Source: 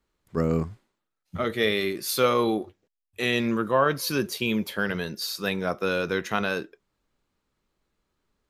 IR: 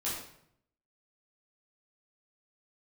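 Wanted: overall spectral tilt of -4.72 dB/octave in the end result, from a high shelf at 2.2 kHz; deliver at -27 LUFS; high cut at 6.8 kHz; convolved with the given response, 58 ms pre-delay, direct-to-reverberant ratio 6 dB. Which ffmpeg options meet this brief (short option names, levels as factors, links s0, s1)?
-filter_complex "[0:a]lowpass=6800,highshelf=f=2200:g=-7,asplit=2[s0][s1];[1:a]atrim=start_sample=2205,adelay=58[s2];[s1][s2]afir=irnorm=-1:irlink=0,volume=0.299[s3];[s0][s3]amix=inputs=2:normalize=0,volume=0.944"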